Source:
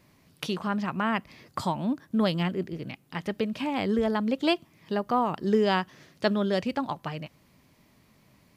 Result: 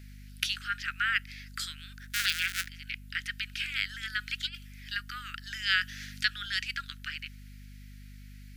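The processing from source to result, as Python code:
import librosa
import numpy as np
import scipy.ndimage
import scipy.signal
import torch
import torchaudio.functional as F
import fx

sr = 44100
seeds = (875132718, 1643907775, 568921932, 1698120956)

y = fx.cycle_switch(x, sr, every=2, mode='inverted', at=(2.01, 2.69))
y = scipy.signal.sosfilt(scipy.signal.butter(16, 1400.0, 'highpass', fs=sr, output='sos'), y)
y = fx.over_compress(y, sr, threshold_db=-38.0, ratio=-0.5, at=(4.18, 4.96), fade=0.02)
y = fx.add_hum(y, sr, base_hz=50, snr_db=12)
y = fx.band_squash(y, sr, depth_pct=40, at=(5.81, 6.46))
y = F.gain(torch.from_numpy(y), 6.0).numpy()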